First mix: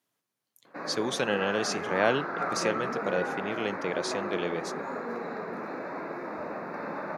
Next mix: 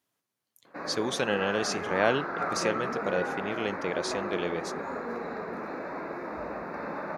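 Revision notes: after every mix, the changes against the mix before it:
master: remove high-pass 100 Hz 24 dB/octave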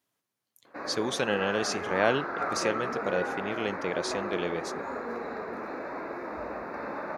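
background: add peaking EQ 170 Hz -7.5 dB 0.43 oct

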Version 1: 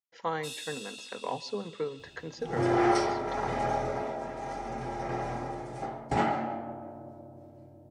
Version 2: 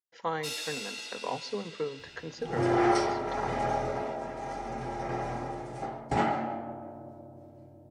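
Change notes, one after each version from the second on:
first sound: remove rippled Chebyshev high-pass 2.5 kHz, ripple 9 dB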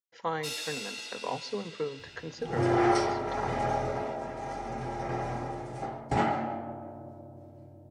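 master: add peaking EQ 100 Hz +4.5 dB 0.71 oct

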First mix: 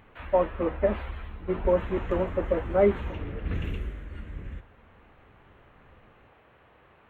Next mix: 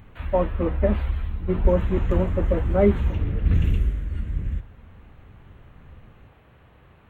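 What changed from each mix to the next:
master: add tone controls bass +12 dB, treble +9 dB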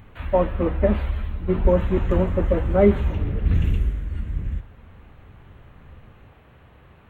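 speech: send on

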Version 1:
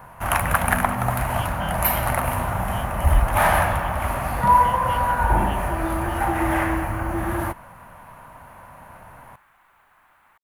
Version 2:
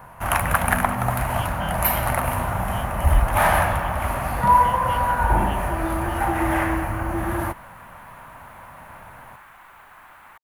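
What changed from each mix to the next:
second sound +11.0 dB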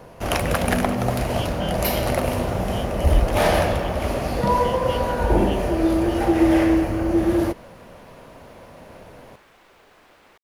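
second sound -3.5 dB; master: add FFT filter 130 Hz 0 dB, 460 Hz +13 dB, 910 Hz -7 dB, 1.6 kHz -6 dB, 5.1 kHz +12 dB, 11 kHz -6 dB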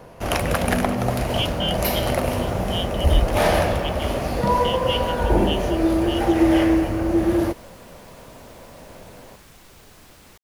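speech +10.5 dB; second sound: add tone controls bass +15 dB, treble +15 dB

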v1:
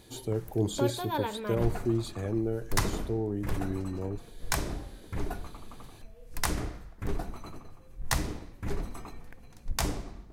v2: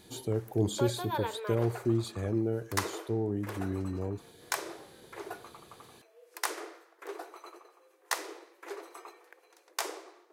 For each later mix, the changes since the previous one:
background: add rippled Chebyshev high-pass 330 Hz, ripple 3 dB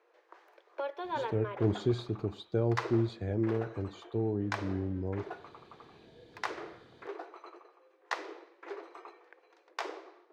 speech: entry +1.05 s; master: add distance through air 210 m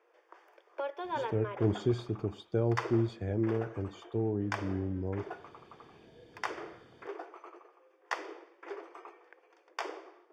master: add Butterworth band-stop 4 kHz, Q 5.9

